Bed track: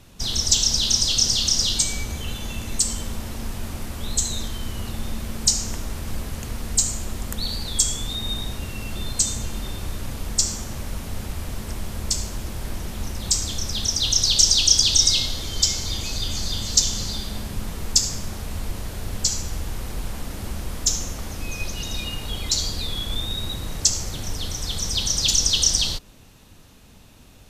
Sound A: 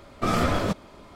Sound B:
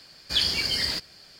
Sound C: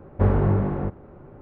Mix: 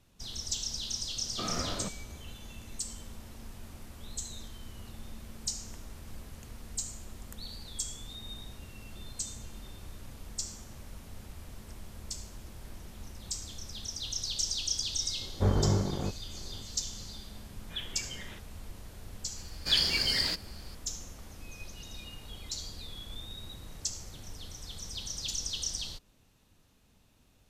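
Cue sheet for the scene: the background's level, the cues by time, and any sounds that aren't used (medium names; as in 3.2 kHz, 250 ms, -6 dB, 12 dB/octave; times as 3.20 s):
bed track -16 dB
1.16 s: add A -13 dB
15.21 s: add C -5.5 dB + transient shaper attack -3 dB, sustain -12 dB
17.40 s: add B -13.5 dB + resampled via 8 kHz
19.36 s: add B -2.5 dB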